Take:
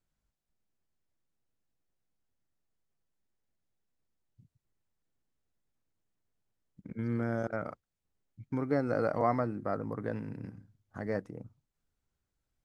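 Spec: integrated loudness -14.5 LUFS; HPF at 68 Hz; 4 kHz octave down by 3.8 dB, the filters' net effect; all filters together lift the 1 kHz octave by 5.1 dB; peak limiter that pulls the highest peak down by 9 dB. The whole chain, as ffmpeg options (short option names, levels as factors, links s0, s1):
-af "highpass=68,equalizer=f=1000:t=o:g=7.5,equalizer=f=4000:t=o:g=-5,volume=11.2,alimiter=limit=1:level=0:latency=1"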